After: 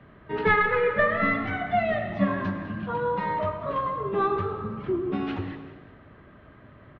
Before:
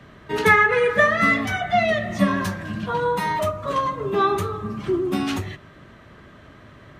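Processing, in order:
stylus tracing distortion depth 0.04 ms
Gaussian smoothing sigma 2.9 samples
echo with shifted repeats 194 ms, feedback 35%, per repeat +57 Hz, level −18 dB
on a send at −10 dB: convolution reverb RT60 1.3 s, pre-delay 81 ms
on the sum: level −4.5 dB

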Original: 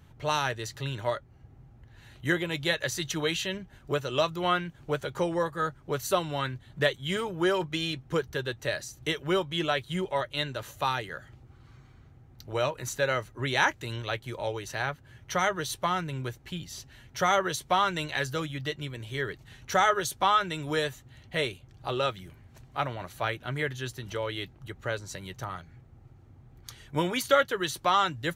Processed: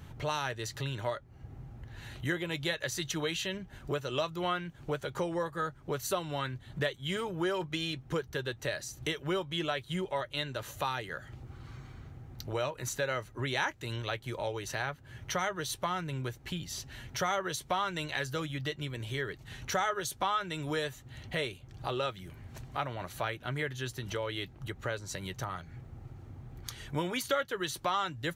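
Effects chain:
downward compressor 2 to 1, threshold −46 dBFS, peak gain reduction 16 dB
level +6.5 dB

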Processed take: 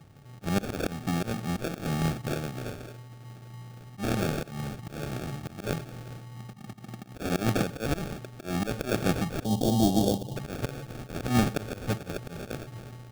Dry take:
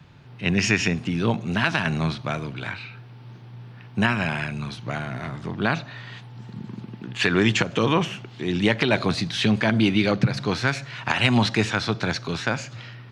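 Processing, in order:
sample-rate reduction 1,000 Hz, jitter 0%
gain on a spectral selection 0:09.44–0:10.36, 1,100–2,800 Hz −23 dB
volume swells 166 ms
on a send: convolution reverb RT60 0.45 s, pre-delay 48 ms, DRR 22.5 dB
on the sum: level −3 dB

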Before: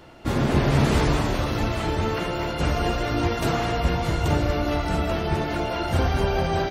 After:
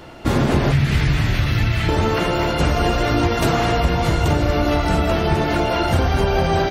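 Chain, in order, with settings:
0:00.72–0:01.89: octave-band graphic EQ 125/250/500/1,000/2,000/8,000 Hz +6/−6/−10/−9/+5/−7 dB
downward compressor, threshold −21 dBFS, peak gain reduction 7.5 dB
level +8 dB

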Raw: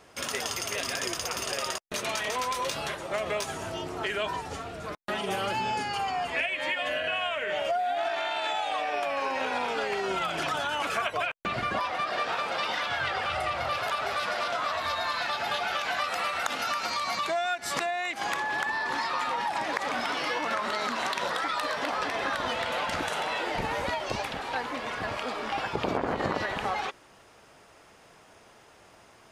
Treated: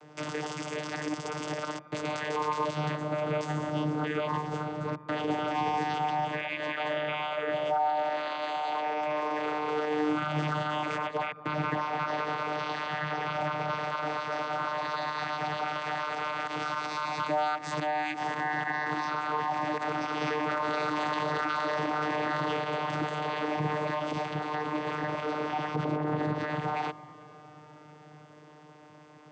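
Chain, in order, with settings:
brickwall limiter −23.5 dBFS, peak gain reduction 8 dB
channel vocoder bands 16, saw 151 Hz
delay with a low-pass on its return 226 ms, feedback 75%, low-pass 1,700 Hz, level −19 dB
0:20.21–0:22.57: envelope flattener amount 100%
level +2.5 dB

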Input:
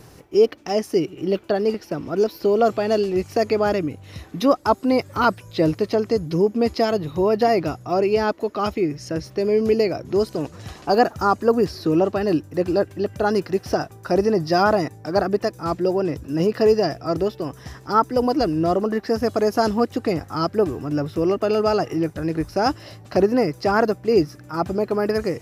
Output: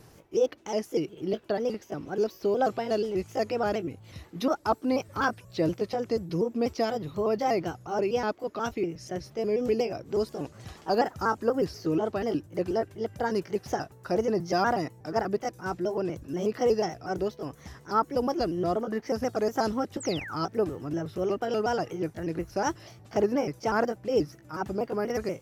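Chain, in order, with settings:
pitch shifter gated in a rhythm +2 semitones, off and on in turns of 121 ms
sound drawn into the spectrogram fall, 0:20.00–0:20.36, 990–8,600 Hz −32 dBFS
level −7.5 dB

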